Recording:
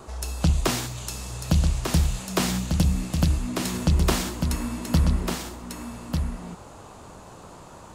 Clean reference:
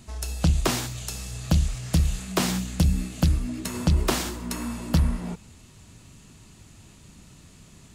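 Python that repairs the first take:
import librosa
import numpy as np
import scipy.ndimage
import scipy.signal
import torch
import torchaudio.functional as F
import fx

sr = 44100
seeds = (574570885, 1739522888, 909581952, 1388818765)

y = fx.noise_reduce(x, sr, print_start_s=7.4, print_end_s=7.9, reduce_db=6.0)
y = fx.fix_echo_inverse(y, sr, delay_ms=1196, level_db=-5.5)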